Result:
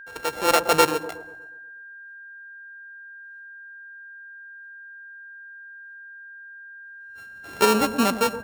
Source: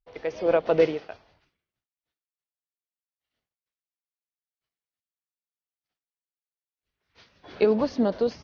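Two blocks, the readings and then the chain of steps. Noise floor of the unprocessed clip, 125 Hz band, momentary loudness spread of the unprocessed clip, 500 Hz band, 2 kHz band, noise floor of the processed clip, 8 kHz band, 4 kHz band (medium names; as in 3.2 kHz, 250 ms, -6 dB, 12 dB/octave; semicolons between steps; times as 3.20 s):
under -85 dBFS, +1.5 dB, 8 LU, -1.0 dB, +12.5 dB, -43 dBFS, no reading, +15.0 dB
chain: sorted samples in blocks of 32 samples; feedback echo behind a low-pass 121 ms, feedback 46%, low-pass 810 Hz, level -10 dB; whistle 1.6 kHz -42 dBFS; trim +2 dB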